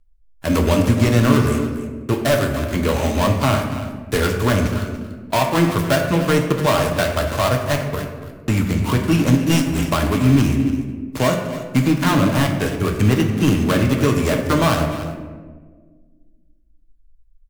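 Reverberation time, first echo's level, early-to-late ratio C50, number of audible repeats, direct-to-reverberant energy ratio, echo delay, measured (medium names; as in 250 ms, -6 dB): 1.5 s, -14.0 dB, 5.5 dB, 1, 1.5 dB, 287 ms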